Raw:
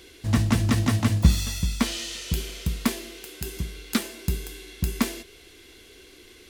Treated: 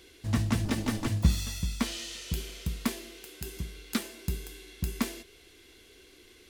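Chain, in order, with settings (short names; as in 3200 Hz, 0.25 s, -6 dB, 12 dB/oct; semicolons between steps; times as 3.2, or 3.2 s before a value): 0.65–1.07 minimum comb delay 3.4 ms; gain -6 dB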